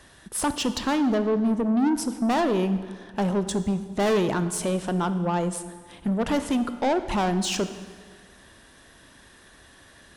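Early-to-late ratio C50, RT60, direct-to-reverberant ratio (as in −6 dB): 11.5 dB, 1.8 s, 10.5 dB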